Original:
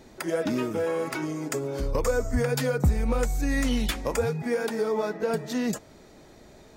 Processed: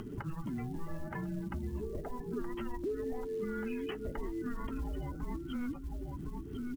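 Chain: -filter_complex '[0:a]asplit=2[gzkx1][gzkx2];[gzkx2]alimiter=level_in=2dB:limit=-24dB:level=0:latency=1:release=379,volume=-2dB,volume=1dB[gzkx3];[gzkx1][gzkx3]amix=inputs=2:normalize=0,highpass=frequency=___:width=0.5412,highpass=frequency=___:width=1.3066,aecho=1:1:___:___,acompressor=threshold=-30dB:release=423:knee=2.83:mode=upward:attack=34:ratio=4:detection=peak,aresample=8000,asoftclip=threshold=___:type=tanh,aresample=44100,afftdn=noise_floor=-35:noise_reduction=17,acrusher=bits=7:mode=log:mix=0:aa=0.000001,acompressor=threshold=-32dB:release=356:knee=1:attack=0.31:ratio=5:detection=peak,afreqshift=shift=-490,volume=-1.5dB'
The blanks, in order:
49, 49, 1048, 0.237, -14.5dB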